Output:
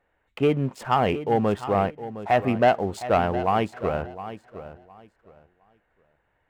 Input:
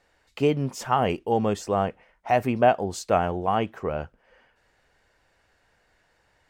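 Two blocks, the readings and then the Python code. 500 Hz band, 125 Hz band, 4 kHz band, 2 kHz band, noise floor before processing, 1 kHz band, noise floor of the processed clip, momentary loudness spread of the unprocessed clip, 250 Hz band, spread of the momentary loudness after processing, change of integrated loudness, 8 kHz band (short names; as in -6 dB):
+1.0 dB, +1.5 dB, +0.5 dB, +2.5 dB, -67 dBFS, +1.0 dB, -71 dBFS, 10 LU, +1.5 dB, 16 LU, +1.0 dB, n/a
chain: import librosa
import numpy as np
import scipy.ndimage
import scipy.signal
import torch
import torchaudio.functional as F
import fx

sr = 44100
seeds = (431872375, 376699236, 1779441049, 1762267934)

y = fx.wiener(x, sr, points=9)
y = fx.peak_eq(y, sr, hz=6000.0, db=-8.5, octaves=0.54)
y = fx.leveller(y, sr, passes=1)
y = fx.echo_feedback(y, sr, ms=712, feedback_pct=22, wet_db=-13.0)
y = fx.dynamic_eq(y, sr, hz=2000.0, q=0.93, threshold_db=-37.0, ratio=4.0, max_db=3)
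y = y * librosa.db_to_amplitude(-2.0)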